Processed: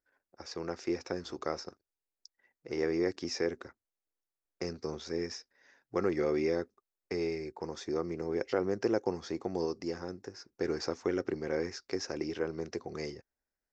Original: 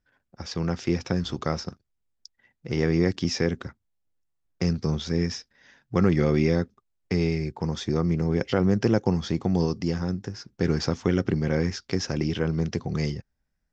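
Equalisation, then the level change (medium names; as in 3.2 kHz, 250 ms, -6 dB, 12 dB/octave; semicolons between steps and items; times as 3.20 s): resonant low shelf 250 Hz -11.5 dB, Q 1.5; peaking EQ 3.2 kHz -9.5 dB 0.41 oct; -7.0 dB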